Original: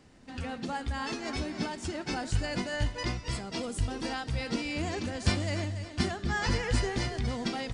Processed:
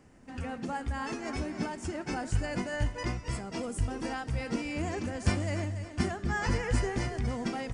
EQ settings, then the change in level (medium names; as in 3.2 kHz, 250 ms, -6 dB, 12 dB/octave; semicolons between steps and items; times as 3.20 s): peaking EQ 3.9 kHz -11.5 dB 0.77 oct; 0.0 dB